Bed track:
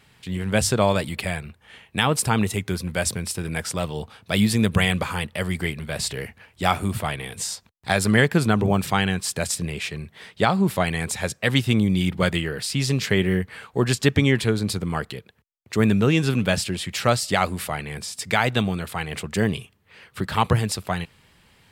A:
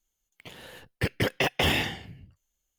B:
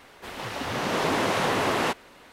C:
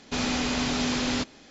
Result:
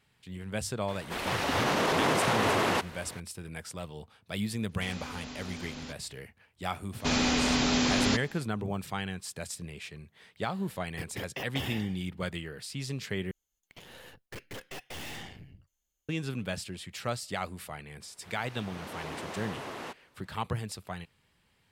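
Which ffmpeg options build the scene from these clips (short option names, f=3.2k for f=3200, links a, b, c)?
-filter_complex "[2:a]asplit=2[a][b];[3:a]asplit=2[c][d];[1:a]asplit=2[e][f];[0:a]volume=-13.5dB[g];[a]alimiter=level_in=20.5dB:limit=-1dB:release=50:level=0:latency=1[h];[d]acontrast=31[i];[e]equalizer=f=15k:w=1.5:g=6.5[j];[f]aeval=exprs='(tanh(100*val(0)+0.65)-tanh(0.65))/100':c=same[k];[g]asplit=2[l][m];[l]atrim=end=13.314[n];[k]atrim=end=2.78,asetpts=PTS-STARTPTS,volume=-0.5dB[o];[m]atrim=start=16.086[p];[h]atrim=end=2.32,asetpts=PTS-STARTPTS,volume=-17dB,afade=t=in:d=0.004:c=hsin,afade=t=out:st=2.316:d=0.004:c=hsin,adelay=880[q];[c]atrim=end=1.5,asetpts=PTS-STARTPTS,volume=-16dB,afade=t=in:d=0.004:c=hsin,afade=t=out:st=1.496:d=0.004:c=hsin,adelay=206829S[r];[i]atrim=end=1.5,asetpts=PTS-STARTPTS,volume=-4.5dB,afade=t=in:d=0.004:c=hsin,afade=t=out:st=1.496:d=0.004:c=hsin,adelay=6930[s];[j]atrim=end=2.78,asetpts=PTS-STARTPTS,volume=-13dB,afade=t=in:d=0.004:c=hsin,afade=t=out:st=2.776:d=0.004:c=hsin,adelay=9960[t];[b]atrim=end=2.32,asetpts=PTS-STARTPTS,volume=-15.5dB,afade=t=in:d=0.004:c=hsin,afade=t=out:st=2.316:d=0.004:c=hsin,adelay=18000[u];[n][o]acrossfade=d=0.004:c1=hsin:c2=hsin[v];[v][p]acrossfade=d=0.004:c1=hsin:c2=hsin[w];[w][q][r][s][t][u]amix=inputs=6:normalize=0"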